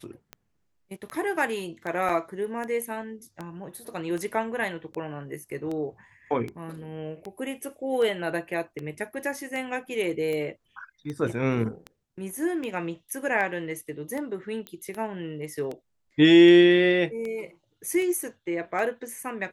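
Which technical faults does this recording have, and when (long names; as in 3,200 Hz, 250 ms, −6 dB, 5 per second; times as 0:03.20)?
scratch tick 78 rpm −22 dBFS
0:02.09: drop-out 4.5 ms
0:14.67: click −21 dBFS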